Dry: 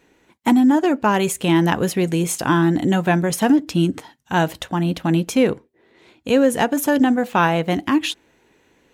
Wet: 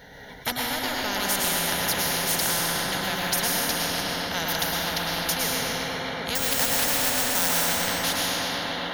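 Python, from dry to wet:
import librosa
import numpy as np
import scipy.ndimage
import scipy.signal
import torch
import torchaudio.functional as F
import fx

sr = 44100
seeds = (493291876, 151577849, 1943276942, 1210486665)

p1 = 10.0 ** (-20.0 / 20.0) * np.tanh(x / 10.0 ** (-20.0 / 20.0))
p2 = x + F.gain(torch.from_numpy(p1), -9.0).numpy()
p3 = fx.fixed_phaser(p2, sr, hz=1700.0, stages=8)
p4 = fx.sample_hold(p3, sr, seeds[0], rate_hz=7200.0, jitter_pct=0, at=(6.35, 7.49))
p5 = p4 + fx.echo_tape(p4, sr, ms=255, feedback_pct=84, wet_db=-4.5, lp_hz=2200.0, drive_db=8.0, wow_cents=25, dry=0)
p6 = fx.rev_plate(p5, sr, seeds[1], rt60_s=1.3, hf_ratio=0.9, predelay_ms=95, drr_db=-2.5)
p7 = fx.spectral_comp(p6, sr, ratio=4.0)
y = F.gain(torch.from_numpy(p7), -4.0).numpy()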